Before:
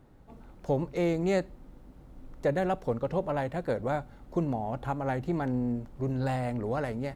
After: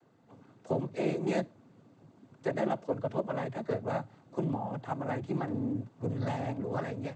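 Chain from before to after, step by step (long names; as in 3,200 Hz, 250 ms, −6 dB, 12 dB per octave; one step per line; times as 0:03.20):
cochlear-implant simulation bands 16
level −3 dB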